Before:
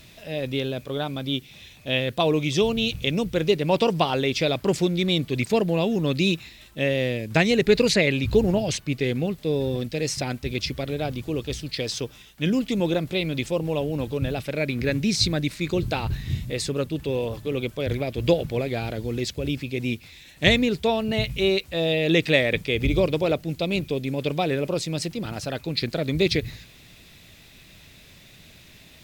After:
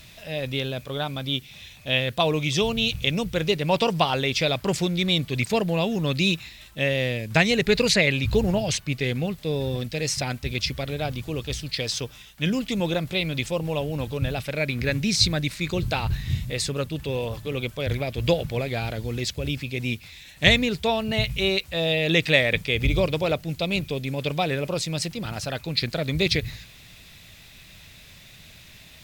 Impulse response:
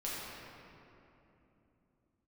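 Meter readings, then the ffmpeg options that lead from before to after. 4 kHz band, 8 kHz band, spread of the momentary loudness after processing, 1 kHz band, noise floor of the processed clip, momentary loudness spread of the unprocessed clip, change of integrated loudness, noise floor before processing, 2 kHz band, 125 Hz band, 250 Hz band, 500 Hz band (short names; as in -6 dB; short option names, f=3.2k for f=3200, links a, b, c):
+2.5 dB, +2.5 dB, 9 LU, +1.0 dB, -48 dBFS, 9 LU, 0.0 dB, -50 dBFS, +2.5 dB, +0.5 dB, -2.5 dB, -2.5 dB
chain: -af "equalizer=f=330:w=0.96:g=-7.5,volume=2.5dB"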